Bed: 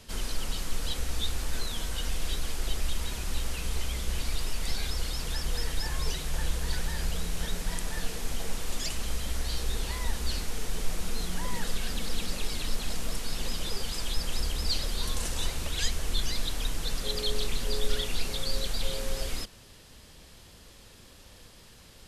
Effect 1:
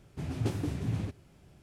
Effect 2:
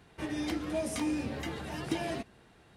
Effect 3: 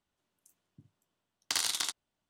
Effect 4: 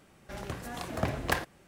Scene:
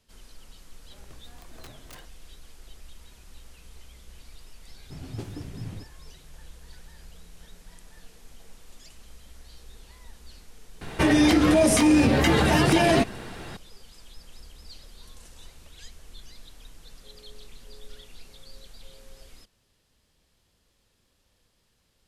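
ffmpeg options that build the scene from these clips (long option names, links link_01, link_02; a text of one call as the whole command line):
ffmpeg -i bed.wav -i cue0.wav -i cue1.wav -i cue2.wav -i cue3.wav -filter_complex "[0:a]volume=-17dB[link_01];[4:a]aeval=exprs='(mod(13.3*val(0)+1,2)-1)/13.3':channel_layout=same[link_02];[2:a]alimiter=level_in=30dB:limit=-1dB:release=50:level=0:latency=1[link_03];[link_02]atrim=end=1.67,asetpts=PTS-STARTPTS,volume=-15.5dB,afade=type=in:duration=0.004:curve=hsin,afade=type=out:start_time=1.666:duration=0.004:curve=hsin,adelay=610[link_04];[1:a]atrim=end=1.62,asetpts=PTS-STARTPTS,volume=-5dB,afade=type=in:duration=0.004:curve=hsin,afade=type=out:start_time=1.616:duration=0.004:curve=hsin,adelay=208593S[link_05];[link_03]atrim=end=2.76,asetpts=PTS-STARTPTS,volume=-10dB,afade=type=in:duration=0.004:curve=hsin,afade=type=out:start_time=2.756:duration=0.004:curve=hsin,adelay=10810[link_06];[link_01][link_04][link_05][link_06]amix=inputs=4:normalize=0" out.wav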